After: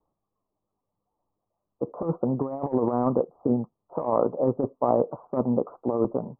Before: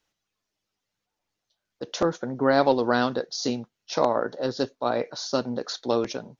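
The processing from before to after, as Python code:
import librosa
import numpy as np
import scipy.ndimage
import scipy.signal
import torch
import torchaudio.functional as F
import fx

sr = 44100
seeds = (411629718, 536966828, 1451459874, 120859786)

p1 = fx.quant_float(x, sr, bits=2)
p2 = x + (p1 * librosa.db_to_amplitude(-9.0))
p3 = scipy.signal.sosfilt(scipy.signal.butter(16, 1200.0, 'lowpass', fs=sr, output='sos'), p2)
p4 = fx.over_compress(p3, sr, threshold_db=-23.0, ratio=-0.5)
y = fx.dynamic_eq(p4, sr, hz=160.0, q=1.7, threshold_db=-39.0, ratio=4.0, max_db=3)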